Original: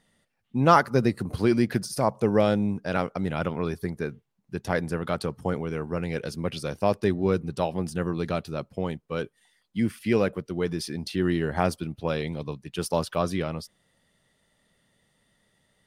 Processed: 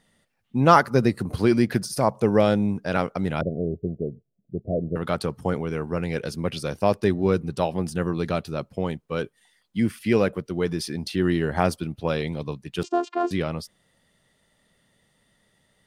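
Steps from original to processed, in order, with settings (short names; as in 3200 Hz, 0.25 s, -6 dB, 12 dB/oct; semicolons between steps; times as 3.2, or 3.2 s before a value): 3.41–4.96 Chebyshev low-pass 690 Hz, order 8; 12.83–13.31 vocoder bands 8, saw 349 Hz; gain +2.5 dB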